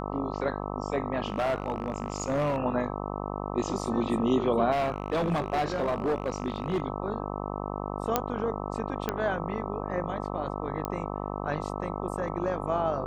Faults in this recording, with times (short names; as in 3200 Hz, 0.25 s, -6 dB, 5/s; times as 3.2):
buzz 50 Hz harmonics 26 -34 dBFS
1.26–2.58 clipped -23 dBFS
4.71–6.8 clipped -23 dBFS
8.16 pop -8 dBFS
9.09 pop -13 dBFS
10.85 pop -17 dBFS